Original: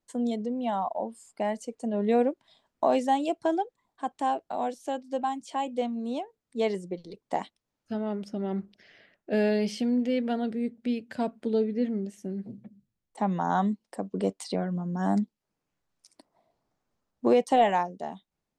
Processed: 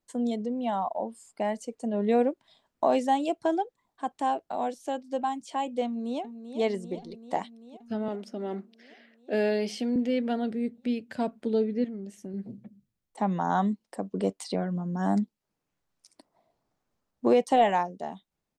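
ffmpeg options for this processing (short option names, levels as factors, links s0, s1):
-filter_complex "[0:a]asplit=2[s0][s1];[s1]afade=t=in:st=5.85:d=0.01,afade=t=out:st=6.59:d=0.01,aecho=0:1:390|780|1170|1560|1950|2340|2730|3120|3510|3900|4290|4680:0.316228|0.237171|0.177878|0.133409|0.100056|0.0750423|0.0562817|0.0422113|0.0316585|0.0237439|0.0178079|0.0133559[s2];[s0][s2]amix=inputs=2:normalize=0,asettb=1/sr,asplit=3[s3][s4][s5];[s3]atrim=end=8.084[s6];[s4]atrim=start=8.08:end=9.96,asetpts=PTS-STARTPTS,afade=t=in:d=0.004:c=qsin,afade=t=out:st=1.876:d=0.004:c=qsin,highpass=f=230:w=0.5412,highpass=f=230:w=1.3066[s7];[s5]atrim=start=9.956[s8];[s6][s7]acrossfade=d=0.004:c1=hsin:c2=qsin[s9];[s9][s8]acrossfade=d=0.004:c1=qsin:c2=hsin,asettb=1/sr,asplit=3[s10][s11][s12];[s10]atrim=end=11.844[s13];[s11]atrim=start=11.84:end=12.34,asetpts=PTS-STARTPTS,afade=t=in:d=0.004:c=qsin,afade=t=out:st=0.496:d=0.004:c=qsin,acompressor=threshold=0.0178:ratio=4:attack=3.2:release=140:knee=1:detection=peak[s14];[s12]atrim=start=12.336[s15];[s13][s14]acrossfade=d=0.004:c1=hsin:c2=qsin[s16];[s16][s15]acrossfade=d=0.004:c1=qsin:c2=hsin"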